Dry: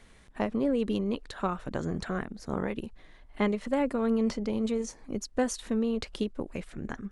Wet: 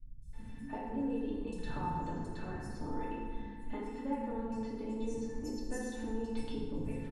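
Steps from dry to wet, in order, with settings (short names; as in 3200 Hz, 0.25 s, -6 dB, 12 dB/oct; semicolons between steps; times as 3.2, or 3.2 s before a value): low shelf 390 Hz +11.5 dB; compressor, threshold -29 dBFS, peak gain reduction 13.5 dB; resonator 890 Hz, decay 0.16 s, harmonics all, mix 90%; three bands offset in time lows, highs, mids 0.22/0.33 s, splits 200/5500 Hz; FDN reverb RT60 1.7 s, low-frequency decay 1.1×, high-frequency decay 0.6×, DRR -6.5 dB; gain +5 dB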